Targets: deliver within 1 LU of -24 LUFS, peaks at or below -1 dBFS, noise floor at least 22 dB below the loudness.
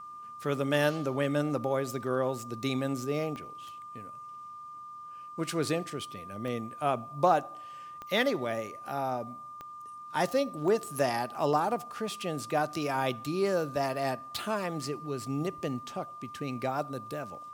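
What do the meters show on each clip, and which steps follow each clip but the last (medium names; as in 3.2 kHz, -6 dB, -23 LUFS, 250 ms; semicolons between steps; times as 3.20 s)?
clicks found 5; steady tone 1.2 kHz; tone level -42 dBFS; loudness -31.5 LUFS; peak level -11.5 dBFS; loudness target -24.0 LUFS
-> de-click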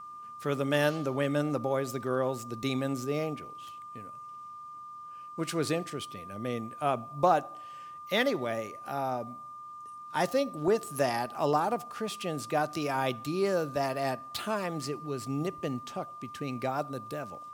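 clicks found 0; steady tone 1.2 kHz; tone level -42 dBFS
-> band-stop 1.2 kHz, Q 30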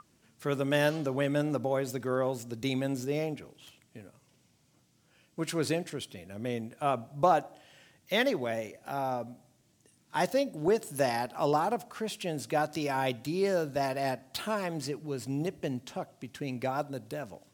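steady tone not found; loudness -32.0 LUFS; peak level -11.5 dBFS; loudness target -24.0 LUFS
-> trim +8 dB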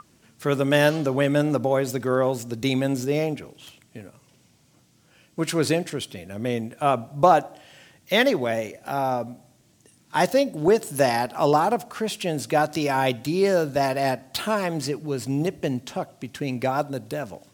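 loudness -24.0 LUFS; peak level -3.5 dBFS; noise floor -60 dBFS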